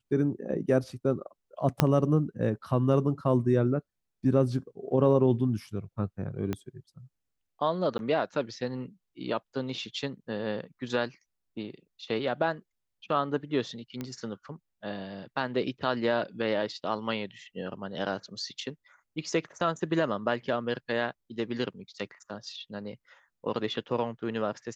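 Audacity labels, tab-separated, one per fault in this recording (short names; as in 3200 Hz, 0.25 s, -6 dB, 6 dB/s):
1.800000	1.800000	pop -6 dBFS
6.530000	6.530000	pop -18 dBFS
7.980000	7.990000	gap
14.010000	14.010000	pop -21 dBFS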